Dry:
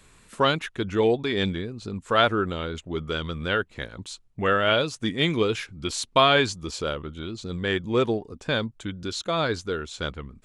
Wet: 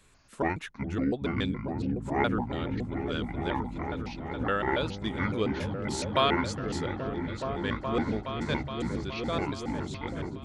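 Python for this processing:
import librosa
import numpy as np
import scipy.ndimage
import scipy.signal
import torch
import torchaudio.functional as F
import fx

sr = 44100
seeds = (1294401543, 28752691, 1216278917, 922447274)

y = fx.pitch_trill(x, sr, semitones=-8.5, every_ms=140)
y = fx.echo_opening(y, sr, ms=419, hz=200, octaves=1, feedback_pct=70, wet_db=0)
y = y * librosa.db_to_amplitude(-6.5)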